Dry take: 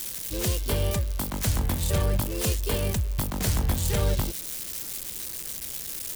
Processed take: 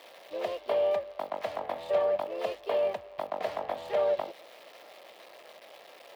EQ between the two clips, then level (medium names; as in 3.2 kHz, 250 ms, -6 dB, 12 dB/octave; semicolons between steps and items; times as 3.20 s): resonant high-pass 630 Hz, resonance Q 5; distance through air 380 m; band-stop 1.5 kHz, Q 10; -2.0 dB